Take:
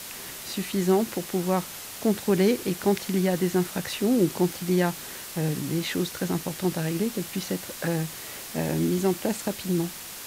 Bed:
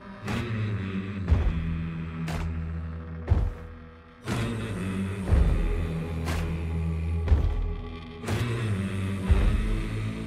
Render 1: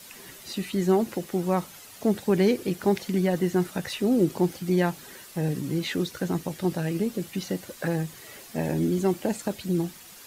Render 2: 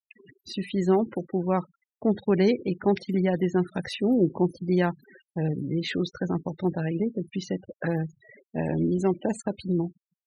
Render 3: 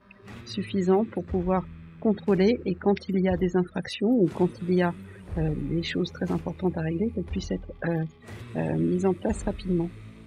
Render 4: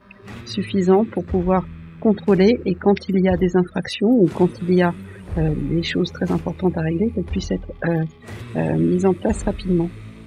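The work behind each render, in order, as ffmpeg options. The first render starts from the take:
-af "afftdn=nr=10:nf=-39"
-af "afftfilt=real='re*gte(hypot(re,im),0.0178)':imag='im*gte(hypot(re,im),0.0178)':win_size=1024:overlap=0.75,agate=range=-33dB:threshold=-54dB:ratio=3:detection=peak"
-filter_complex "[1:a]volume=-13.5dB[a];[0:a][a]amix=inputs=2:normalize=0"
-af "volume=7dB"

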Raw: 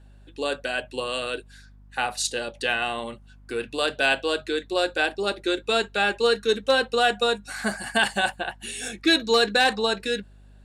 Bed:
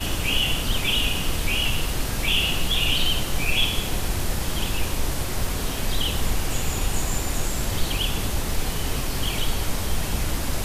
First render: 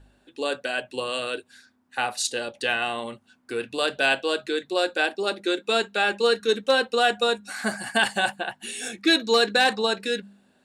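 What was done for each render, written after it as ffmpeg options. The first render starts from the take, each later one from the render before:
-af "bandreject=f=50:t=h:w=4,bandreject=f=100:t=h:w=4,bandreject=f=150:t=h:w=4,bandreject=f=200:t=h:w=4"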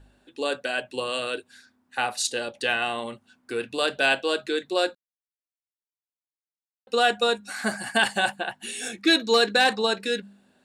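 -filter_complex "[0:a]asplit=3[a][b][c];[a]atrim=end=4.95,asetpts=PTS-STARTPTS,afade=t=out:st=4.946:d=0.004:c=hsin[d];[b]atrim=start=4.95:end=6.87,asetpts=PTS-STARTPTS,volume=0[e];[c]atrim=start=6.87,asetpts=PTS-STARTPTS,afade=t=in:d=0.004:c=hsin[f];[d][e][f]concat=n=3:v=0:a=1"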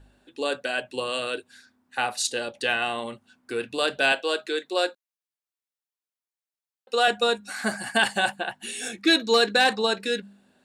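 -filter_complex "[0:a]asettb=1/sr,asplit=3[a][b][c];[a]atrim=end=4.124[d];[b]atrim=start=4.12:end=7.08,asetpts=PTS-STARTPTS,afade=t=in:d=0.004:c=qsin,afade=t=out:st=2.956:d=0.004:c=qsin,highpass=340[e];[c]atrim=start=7.076[f];[d][e]acrossfade=d=0.004:c1=hsin:c2=qsin[g];[g][f]acrossfade=d=0.004:c1=qsin:c2=hsin"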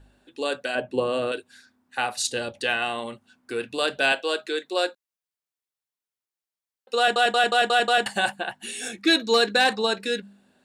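-filter_complex "[0:a]asettb=1/sr,asplit=3[a][b][c];[a]atrim=end=0.754[d];[b]atrim=start=0.75:end=1.32,asetpts=PTS-STARTPTS,afade=t=in:d=0.004:c=qsin,afade=t=out:st=0.566:d=0.004:c=qsin,tiltshelf=f=1.3k:g=9[e];[c]atrim=start=1.316[f];[d][e]acrossfade=d=0.004:c1=hsin:c2=qsin[g];[g][f]acrossfade=d=0.004:c1=qsin:c2=hsin,asettb=1/sr,asplit=3[h][i][j];[h]atrim=end=2.174[k];[i]atrim=start=2.17:end=2.63,asetpts=PTS-STARTPTS,afade=t=in:d=0.004:c=qsin,afade=t=out:st=0.456:d=0.004:c=qsin,equalizer=f=82:w=0.78:g=12.5[l];[j]atrim=start=2.626[m];[k][l]acrossfade=d=0.004:c1=hsin:c2=qsin[n];[n][m]acrossfade=d=0.004:c1=qsin:c2=hsin,asplit=7[o][p][q][r][s][t][u];[o]atrim=end=7.162[v];[p]atrim=start=6.978:end=7.162[w];[q]atrim=start=6.978:end=7.162[x];[r]atrim=start=6.978:end=7.162[y];[s]atrim=start=6.978:end=7.162[z];[t]atrim=start=6.978:end=7.162[aa];[u]atrim=start=8.058[ab];[v][w]acrossfade=d=0.004:c1=hsin:c2=hsin[ac];[ac][x]acrossfade=d=0.004:c1=hsin:c2=hsin[ad];[ad][y]acrossfade=d=0.004:c1=hsin:c2=hsin[ae];[ae][z]acrossfade=d=0.004:c1=hsin:c2=hsin[af];[af][aa]acrossfade=d=0.004:c1=hsin:c2=hsin[ag];[ag][ab]acrossfade=d=0.004:c1=hsin:c2=hsin"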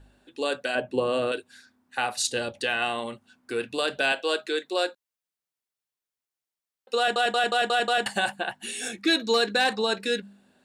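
-af "alimiter=limit=-14dB:level=0:latency=1:release=100"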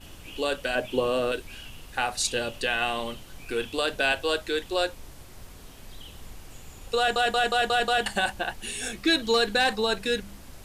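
-filter_complex "[1:a]volume=-20dB[a];[0:a][a]amix=inputs=2:normalize=0"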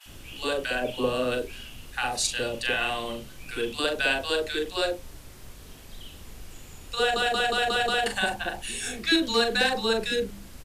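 -filter_complex "[0:a]asplit=2[a][b];[b]adelay=40,volume=-7.5dB[c];[a][c]amix=inputs=2:normalize=0,acrossover=split=830[d][e];[d]adelay=60[f];[f][e]amix=inputs=2:normalize=0"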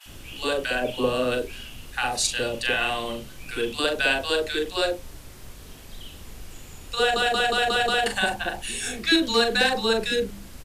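-af "volume=2.5dB"

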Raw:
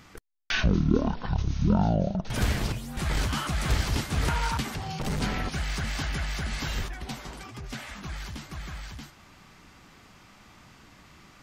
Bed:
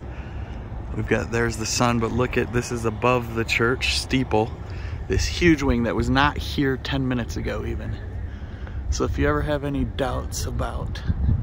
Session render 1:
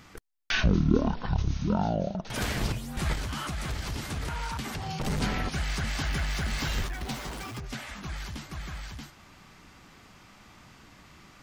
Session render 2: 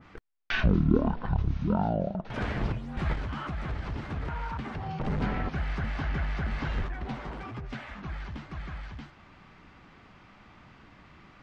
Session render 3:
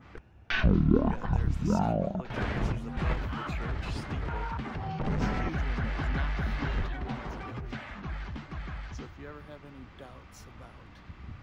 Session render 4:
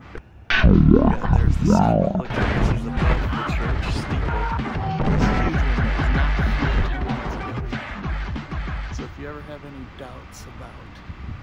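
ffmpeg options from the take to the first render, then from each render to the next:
-filter_complex "[0:a]asettb=1/sr,asplit=3[a][b][c];[a]atrim=end=1.584[d];[b]atrim=start=1.58:end=2.56,asetpts=PTS-STARTPTS,afade=t=in:d=0.004:c=qsin,afade=t=out:st=0.976:d=0.004:c=qsin,lowshelf=f=170:g=-10[e];[c]atrim=start=2.556[f];[d][e]acrossfade=d=0.004:c1=hsin:c2=qsin[g];[g][f]acrossfade=d=0.004:c1=qsin:c2=hsin,asettb=1/sr,asplit=3[h][i][j];[h]atrim=end=3.134[k];[i]atrim=start=3.13:end=4.83,asetpts=PTS-STARTPTS,afade=t=in:d=0.004:c=qsin,afade=t=out:st=1.696:d=0.004:c=qsin,acompressor=threshold=-30dB:ratio=4:attack=3.2:release=140:knee=1:detection=peak[l];[j]atrim=start=4.826[m];[k][l]acrossfade=d=0.004:c1=hsin:c2=qsin[n];[n][m]acrossfade=d=0.004:c1=qsin:c2=hsin,asettb=1/sr,asplit=3[o][p][q];[o]atrim=end=6.054[r];[p]atrim=start=6.05:end=7.6,asetpts=PTS-STARTPTS,afade=t=in:d=0.004:c=qsin,afade=t=out:st=1.546:d=0.004:c=qsin,aeval=exprs='val(0)+0.5*0.0106*sgn(val(0))':c=same[s];[q]atrim=start=7.596[t];[r][s]acrossfade=d=0.004:c1=hsin:c2=qsin[u];[u][t]acrossfade=d=0.004:c1=qsin:c2=hsin"
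-af "lowpass=2.8k,adynamicequalizer=threshold=0.00316:dfrequency=2100:dqfactor=0.7:tfrequency=2100:tqfactor=0.7:attack=5:release=100:ratio=0.375:range=3.5:mode=cutabove:tftype=highshelf"
-filter_complex "[1:a]volume=-23.5dB[a];[0:a][a]amix=inputs=2:normalize=0"
-af "volume=10.5dB,alimiter=limit=-2dB:level=0:latency=1"

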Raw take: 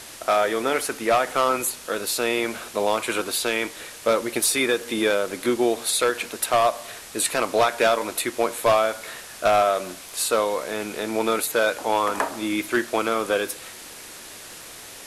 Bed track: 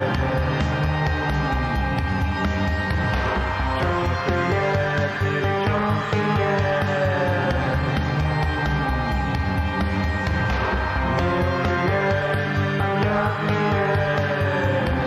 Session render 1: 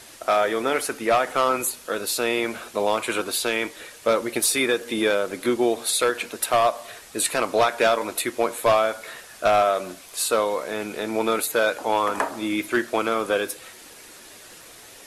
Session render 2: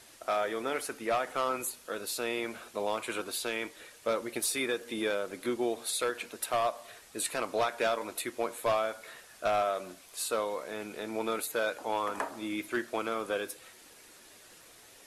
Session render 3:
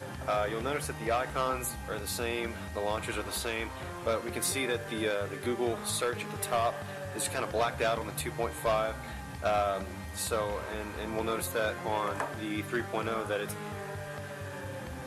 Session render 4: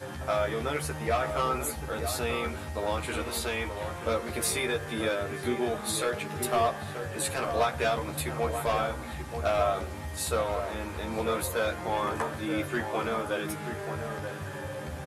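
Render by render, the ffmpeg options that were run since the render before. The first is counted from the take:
-af "afftdn=nr=6:nf=-41"
-af "volume=-10dB"
-filter_complex "[1:a]volume=-19dB[a];[0:a][a]amix=inputs=2:normalize=0"
-filter_complex "[0:a]asplit=2[a][b];[b]adelay=13,volume=-3dB[c];[a][c]amix=inputs=2:normalize=0,asplit=2[d][e];[e]adelay=932.9,volume=-7dB,highshelf=f=4k:g=-21[f];[d][f]amix=inputs=2:normalize=0"

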